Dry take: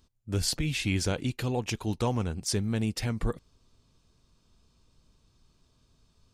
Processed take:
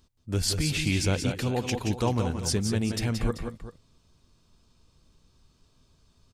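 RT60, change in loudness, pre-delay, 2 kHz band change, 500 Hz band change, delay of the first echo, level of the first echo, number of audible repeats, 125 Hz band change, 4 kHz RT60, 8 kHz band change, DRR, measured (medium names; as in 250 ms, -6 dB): no reverb, +2.5 dB, no reverb, +2.5 dB, +3.0 dB, 174 ms, -7.5 dB, 2, +2.5 dB, no reverb, +2.5 dB, no reverb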